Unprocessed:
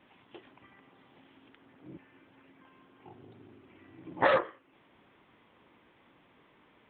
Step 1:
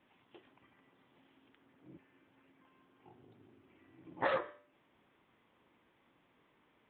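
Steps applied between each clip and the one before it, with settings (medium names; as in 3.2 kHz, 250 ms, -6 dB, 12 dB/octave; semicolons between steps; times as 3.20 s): de-hum 98.57 Hz, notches 38; trim -8 dB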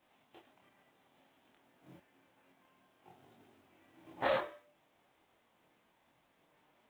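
formants flattened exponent 0.6; peaking EQ 660 Hz +8 dB 0.78 oct; chorus voices 4, 0.55 Hz, delay 24 ms, depth 3.4 ms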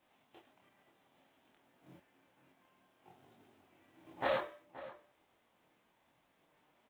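echo from a far wall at 90 m, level -15 dB; trim -1.5 dB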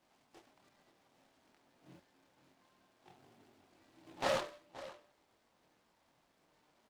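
delay time shaken by noise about 2.1 kHz, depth 0.074 ms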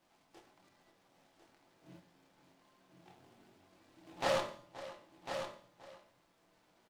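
feedback comb 94 Hz, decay 0.59 s, harmonics all, mix 50%; delay 1050 ms -8 dB; reverberation RT60 0.45 s, pre-delay 6 ms, DRR 8.5 dB; trim +5.5 dB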